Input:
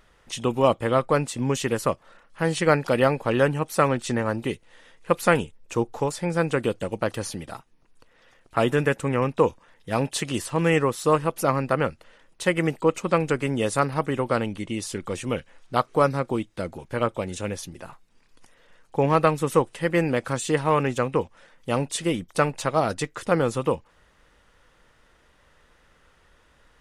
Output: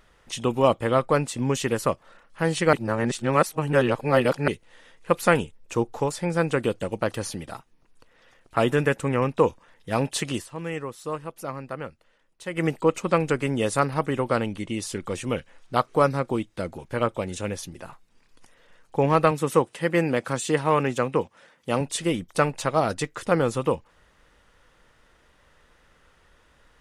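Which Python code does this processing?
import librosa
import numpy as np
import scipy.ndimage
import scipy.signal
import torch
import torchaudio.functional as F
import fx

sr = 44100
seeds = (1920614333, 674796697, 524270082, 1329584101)

y = fx.highpass(x, sr, hz=110.0, slope=12, at=(19.31, 21.81))
y = fx.edit(y, sr, fx.reverse_span(start_s=2.73, length_s=1.75),
    fx.fade_down_up(start_s=10.32, length_s=2.32, db=-11.0, fade_s=0.14), tone=tone)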